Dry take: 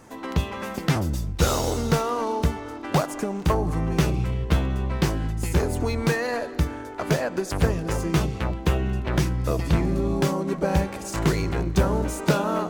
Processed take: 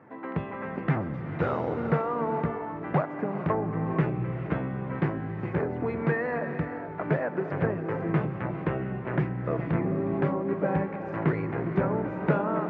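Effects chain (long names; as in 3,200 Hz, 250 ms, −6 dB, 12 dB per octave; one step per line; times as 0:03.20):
elliptic band-pass filter 120–2,000 Hz, stop band 70 dB
reverb whose tail is shaped and stops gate 490 ms rising, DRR 8 dB
level −3 dB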